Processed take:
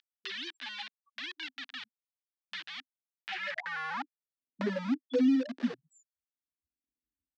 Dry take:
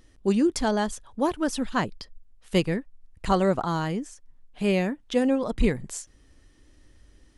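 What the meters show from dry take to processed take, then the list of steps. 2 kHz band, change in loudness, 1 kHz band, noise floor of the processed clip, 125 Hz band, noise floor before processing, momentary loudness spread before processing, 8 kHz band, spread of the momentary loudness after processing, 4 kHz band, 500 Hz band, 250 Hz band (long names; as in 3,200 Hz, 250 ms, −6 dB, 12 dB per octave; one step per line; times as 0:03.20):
−3.5 dB, −8.5 dB, −13.0 dB, below −85 dBFS, −19.0 dB, −58 dBFS, 11 LU, below −20 dB, 17 LU, −3.5 dB, −13.0 dB, −7.5 dB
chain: spectral peaks only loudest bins 1
in parallel at −4.5 dB: bit reduction 6 bits
on the sum: high-pass filter sweep 3,500 Hz → 330 Hz, 0:03.14–0:04.65
loudspeaker in its box 250–4,800 Hz, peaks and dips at 260 Hz +10 dB, 430 Hz −4 dB, 1,700 Hz +8 dB
multiband upward and downward compressor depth 70%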